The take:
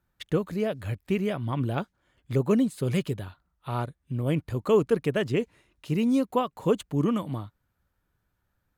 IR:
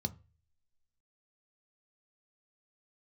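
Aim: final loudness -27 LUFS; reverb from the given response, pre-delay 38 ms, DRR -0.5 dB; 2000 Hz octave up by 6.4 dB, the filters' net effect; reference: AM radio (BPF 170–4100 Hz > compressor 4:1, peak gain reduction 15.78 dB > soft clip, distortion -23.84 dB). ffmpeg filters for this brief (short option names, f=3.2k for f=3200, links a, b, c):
-filter_complex "[0:a]equalizer=f=2k:t=o:g=8.5,asplit=2[a][b];[1:a]atrim=start_sample=2205,adelay=38[c];[b][c]afir=irnorm=-1:irlink=0,volume=0dB[d];[a][d]amix=inputs=2:normalize=0,highpass=170,lowpass=4.1k,acompressor=threshold=-28dB:ratio=4,asoftclip=threshold=-18.5dB,volume=5dB"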